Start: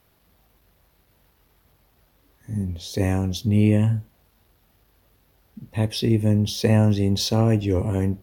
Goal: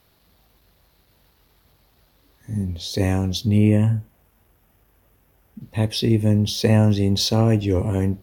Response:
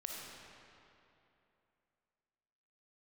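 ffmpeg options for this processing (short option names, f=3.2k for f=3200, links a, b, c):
-af "asetnsamples=n=441:p=0,asendcmd='3.58 equalizer g -10.5;5.61 equalizer g 3',equalizer=f=4.2k:t=o:w=0.58:g=6,volume=1.5dB"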